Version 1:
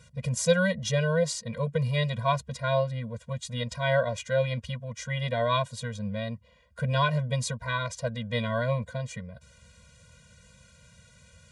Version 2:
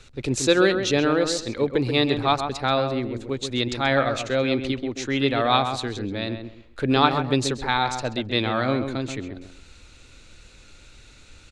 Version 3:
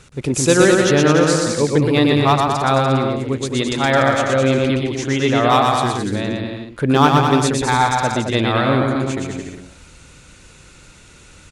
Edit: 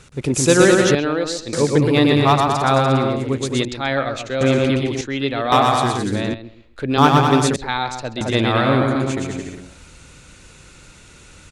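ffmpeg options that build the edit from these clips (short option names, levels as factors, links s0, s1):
-filter_complex "[1:a]asplit=5[s0][s1][s2][s3][s4];[2:a]asplit=6[s5][s6][s7][s8][s9][s10];[s5]atrim=end=0.952[s11];[s0]atrim=start=0.948:end=1.532[s12];[s6]atrim=start=1.528:end=3.652[s13];[s1]atrim=start=3.648:end=4.412[s14];[s7]atrim=start=4.408:end=5.012[s15];[s2]atrim=start=5.008:end=5.522[s16];[s8]atrim=start=5.518:end=6.342[s17];[s3]atrim=start=6.338:end=6.982[s18];[s9]atrim=start=6.978:end=7.562[s19];[s4]atrim=start=7.558:end=8.212[s20];[s10]atrim=start=8.208[s21];[s11][s12]acrossfade=d=0.004:c1=hsin:c2=hsin[s22];[s22][s13]acrossfade=d=0.004:c1=hsin:c2=hsin[s23];[s23][s14]acrossfade=d=0.004:c1=hsin:c2=hsin[s24];[s24][s15]acrossfade=d=0.004:c1=hsin:c2=hsin[s25];[s25][s16]acrossfade=d=0.004:c1=hsin:c2=hsin[s26];[s26][s17]acrossfade=d=0.004:c1=hsin:c2=hsin[s27];[s27][s18]acrossfade=d=0.004:c1=hsin:c2=hsin[s28];[s28][s19]acrossfade=d=0.004:c1=hsin:c2=hsin[s29];[s29][s20]acrossfade=d=0.004:c1=hsin:c2=hsin[s30];[s30][s21]acrossfade=d=0.004:c1=hsin:c2=hsin"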